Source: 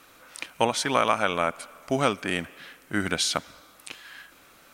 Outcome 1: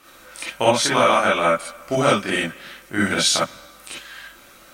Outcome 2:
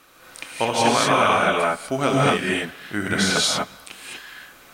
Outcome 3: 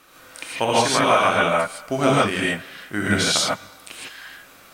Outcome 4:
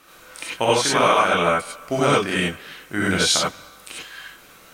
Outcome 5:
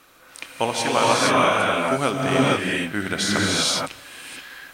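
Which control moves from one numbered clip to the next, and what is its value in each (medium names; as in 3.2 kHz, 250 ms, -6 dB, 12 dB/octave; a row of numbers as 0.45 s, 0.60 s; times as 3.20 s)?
gated-style reverb, gate: 80 ms, 270 ms, 180 ms, 120 ms, 500 ms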